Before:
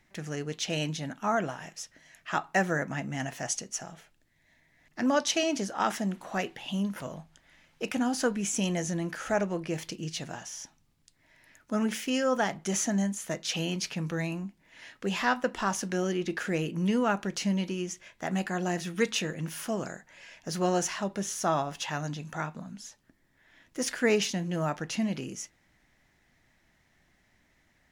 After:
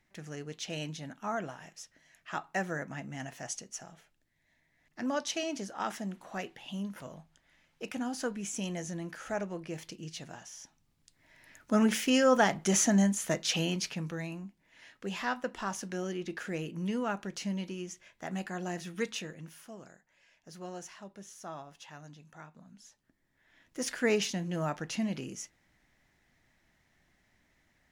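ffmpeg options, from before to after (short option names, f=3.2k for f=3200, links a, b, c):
-af "volume=16dB,afade=t=in:st=10.62:d=1.11:silence=0.316228,afade=t=out:st=13.27:d=0.92:silence=0.334965,afade=t=out:st=19:d=0.64:silence=0.334965,afade=t=in:st=22.49:d=1.51:silence=0.223872"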